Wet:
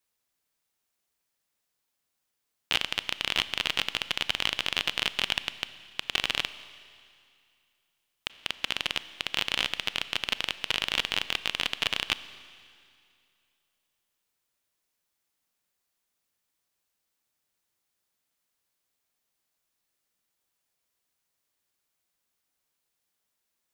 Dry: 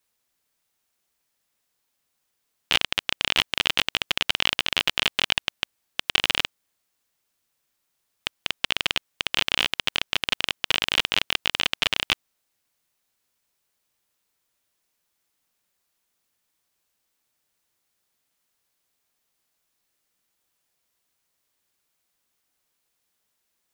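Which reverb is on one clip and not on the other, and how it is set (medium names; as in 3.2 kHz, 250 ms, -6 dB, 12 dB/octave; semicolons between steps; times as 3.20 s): Schroeder reverb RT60 2.4 s, combs from 28 ms, DRR 14 dB; trim -5 dB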